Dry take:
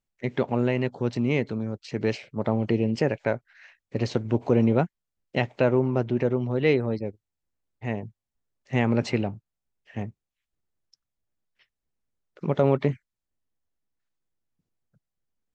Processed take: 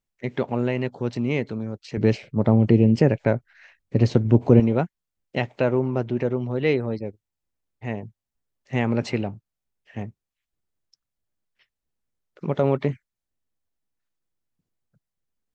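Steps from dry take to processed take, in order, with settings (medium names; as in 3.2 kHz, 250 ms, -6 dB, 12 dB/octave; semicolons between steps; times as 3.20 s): 1.97–4.60 s: bass shelf 370 Hz +11 dB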